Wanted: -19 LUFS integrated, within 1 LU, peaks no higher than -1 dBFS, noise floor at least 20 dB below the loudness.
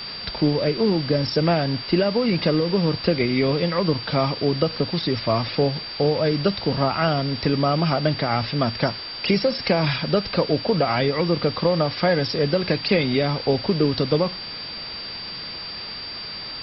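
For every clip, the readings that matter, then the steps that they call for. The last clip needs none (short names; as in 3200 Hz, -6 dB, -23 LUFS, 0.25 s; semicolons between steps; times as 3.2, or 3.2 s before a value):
steady tone 4700 Hz; tone level -32 dBFS; noise floor -34 dBFS; noise floor target -42 dBFS; loudness -22.0 LUFS; peak -5.0 dBFS; loudness target -19.0 LUFS
-> notch 4700 Hz, Q 30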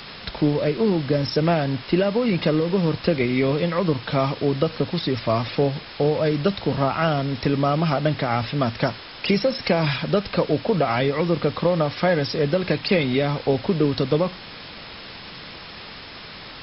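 steady tone none; noise floor -39 dBFS; noise floor target -42 dBFS
-> denoiser 6 dB, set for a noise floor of -39 dBFS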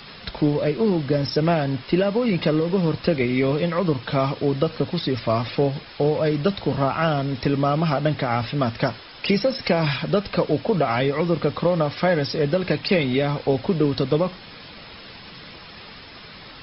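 noise floor -42 dBFS; noise floor target -43 dBFS
-> denoiser 6 dB, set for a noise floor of -42 dBFS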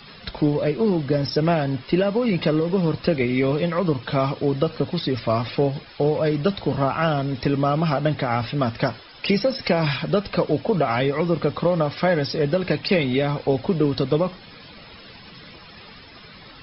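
noise floor -45 dBFS; loudness -22.5 LUFS; peak -5.5 dBFS; loudness target -19.0 LUFS
-> gain +3.5 dB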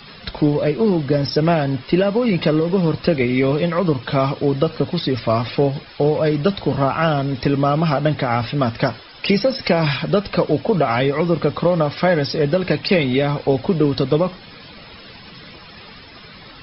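loudness -19.0 LUFS; peak -2.0 dBFS; noise floor -41 dBFS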